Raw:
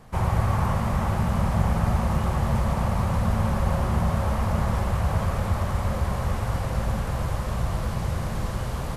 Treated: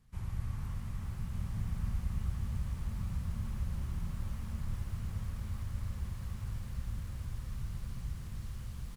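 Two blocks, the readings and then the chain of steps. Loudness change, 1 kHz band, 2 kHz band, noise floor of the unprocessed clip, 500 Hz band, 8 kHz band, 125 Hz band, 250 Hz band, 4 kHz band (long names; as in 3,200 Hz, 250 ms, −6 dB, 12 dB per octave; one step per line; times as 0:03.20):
−14.5 dB, −27.0 dB, −20.5 dB, −30 dBFS, −29.0 dB, −14.5 dB, −13.5 dB, −17.5 dB, −16.5 dB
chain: sub-octave generator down 2 octaves, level −5 dB
guitar amp tone stack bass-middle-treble 6-0-2
floating-point word with a short mantissa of 6 bits
on a send: single-tap delay 1,190 ms −6.5 dB
on the sum: feedback echo at a low word length 447 ms, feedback 80%, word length 9 bits, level −12 dB
level −2 dB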